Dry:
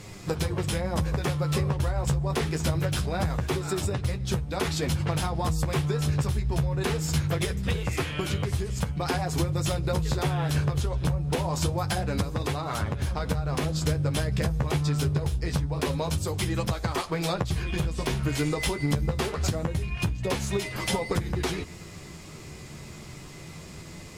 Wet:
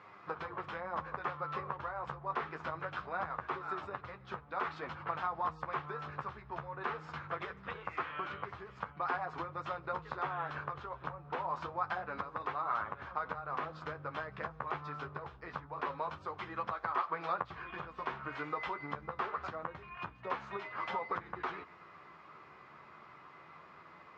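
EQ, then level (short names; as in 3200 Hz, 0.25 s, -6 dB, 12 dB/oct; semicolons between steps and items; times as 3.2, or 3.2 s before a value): band-pass 1200 Hz, Q 2.9; air absorption 210 m; +3.5 dB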